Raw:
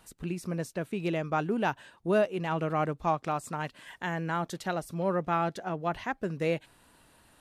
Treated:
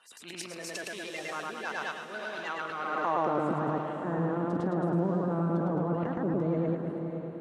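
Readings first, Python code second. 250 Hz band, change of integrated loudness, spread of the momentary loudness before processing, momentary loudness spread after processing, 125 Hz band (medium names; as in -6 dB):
+2.5 dB, 0.0 dB, 8 LU, 9 LU, +2.0 dB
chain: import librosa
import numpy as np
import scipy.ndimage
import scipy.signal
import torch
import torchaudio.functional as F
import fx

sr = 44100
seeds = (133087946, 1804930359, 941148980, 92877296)

p1 = fx.spec_quant(x, sr, step_db=30)
p2 = scipy.signal.sosfilt(scipy.signal.butter(2, 120.0, 'highpass', fs=sr, output='sos'), p1)
p3 = fx.dynamic_eq(p2, sr, hz=2700.0, q=0.81, threshold_db=-45.0, ratio=4.0, max_db=-4)
p4 = fx.rider(p3, sr, range_db=10, speed_s=0.5)
p5 = p3 + F.gain(torch.from_numpy(p4), 2.0).numpy()
p6 = fx.echo_feedback(p5, sr, ms=108, feedback_pct=44, wet_db=-3.0)
p7 = fx.level_steps(p6, sr, step_db=16)
p8 = fx.transient(p7, sr, attack_db=-9, sustain_db=8)
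p9 = fx.filter_sweep_bandpass(p8, sr, from_hz=3300.0, to_hz=210.0, start_s=2.78, end_s=3.56, q=0.77)
p10 = p9 + fx.echo_diffused(p9, sr, ms=541, feedback_pct=42, wet_db=-7, dry=0)
y = F.gain(torch.from_numpy(p10), 6.5).numpy()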